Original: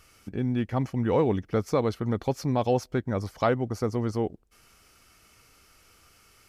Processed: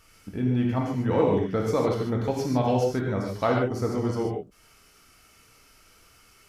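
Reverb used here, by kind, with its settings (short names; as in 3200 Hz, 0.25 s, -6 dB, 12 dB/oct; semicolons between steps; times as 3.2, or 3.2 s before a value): non-linear reverb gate 0.17 s flat, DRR -1.5 dB; gain -2 dB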